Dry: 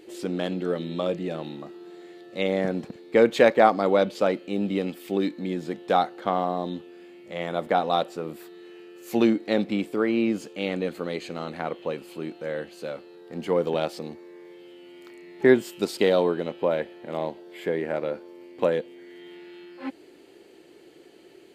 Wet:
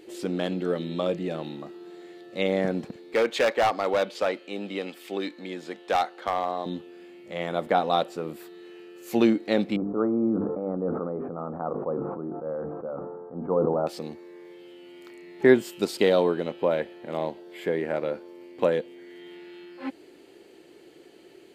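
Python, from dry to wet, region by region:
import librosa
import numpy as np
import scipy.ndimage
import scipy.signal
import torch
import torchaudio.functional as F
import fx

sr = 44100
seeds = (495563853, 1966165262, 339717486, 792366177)

y = fx.chain(x, sr, fx.weighting(curve='A'),
    fx.clip_hard(threshold_db=-17.5), at=(3.14, 6.66))
y = fx.chain(y, sr, fx.cheby1_lowpass(hz=1300.0, order=5),
    fx.hum_notches(base_hz=50, count=9),
    fx.sustainer(db_per_s=27.0), at=(9.76, 13.87))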